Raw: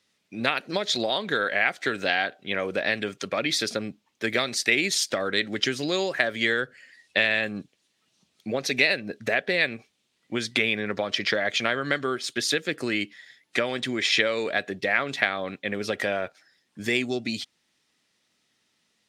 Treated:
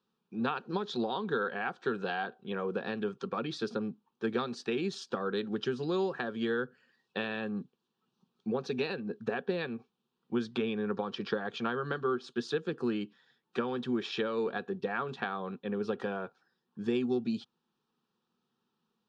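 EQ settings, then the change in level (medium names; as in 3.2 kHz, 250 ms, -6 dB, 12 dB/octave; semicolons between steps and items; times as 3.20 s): low-pass 2.2 kHz 12 dB/octave; peaking EQ 250 Hz +11.5 dB 0.29 oct; static phaser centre 410 Hz, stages 8; -2.0 dB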